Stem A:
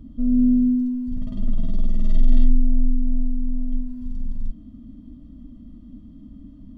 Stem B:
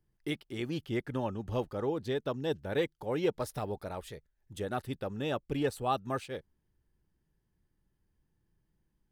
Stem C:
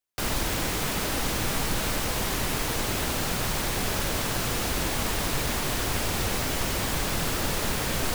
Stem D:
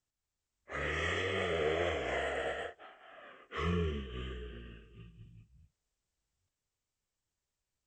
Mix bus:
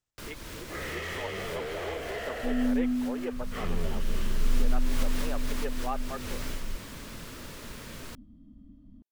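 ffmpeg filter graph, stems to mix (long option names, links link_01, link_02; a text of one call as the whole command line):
ffmpeg -i stem1.wav -i stem2.wav -i stem3.wav -i stem4.wav -filter_complex "[0:a]adelay=2250,volume=-10dB[link_01];[1:a]highshelf=frequency=2100:gain=2,afwtdn=0.01,highpass=frequency=410:width=0.5412,highpass=frequency=410:width=1.3066,volume=-3.5dB,asplit=2[link_02][link_03];[2:a]equalizer=frequency=770:width=5.4:gain=-10.5,volume=-4.5dB,afade=type=in:start_time=4.38:duration=0.7:silence=0.398107,afade=type=out:start_time=6.29:duration=0.34:silence=0.316228[link_04];[3:a]asoftclip=type=hard:threshold=-35dB,volume=1.5dB[link_05];[link_03]apad=whole_len=359391[link_06];[link_04][link_06]sidechaincompress=threshold=-44dB:ratio=12:attack=43:release=308[link_07];[link_01][link_02][link_07][link_05]amix=inputs=4:normalize=0,highshelf=frequency=7000:gain=-4" out.wav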